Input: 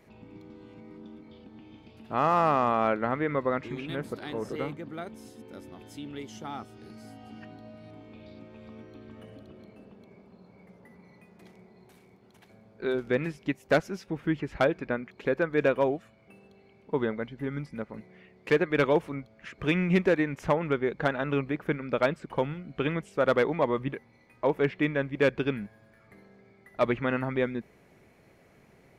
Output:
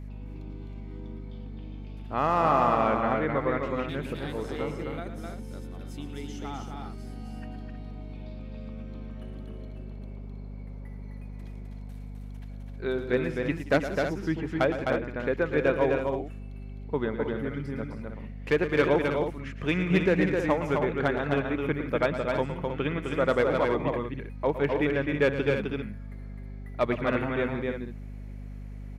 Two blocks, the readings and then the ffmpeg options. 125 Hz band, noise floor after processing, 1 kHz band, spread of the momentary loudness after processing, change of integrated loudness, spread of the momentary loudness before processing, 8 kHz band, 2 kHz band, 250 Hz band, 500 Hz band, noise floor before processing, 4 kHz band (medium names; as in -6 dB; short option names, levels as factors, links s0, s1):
+2.5 dB, -39 dBFS, +1.0 dB, 18 LU, +1.0 dB, 23 LU, no reading, +1.0 dB, +1.5 dB, +1.0 dB, -59 dBFS, +1.0 dB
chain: -af "aecho=1:1:113|177|258|317:0.282|0.133|0.631|0.355,aeval=exprs='val(0)+0.0141*(sin(2*PI*50*n/s)+sin(2*PI*2*50*n/s)/2+sin(2*PI*3*50*n/s)/3+sin(2*PI*4*50*n/s)/4+sin(2*PI*5*50*n/s)/5)':c=same,volume=0.891"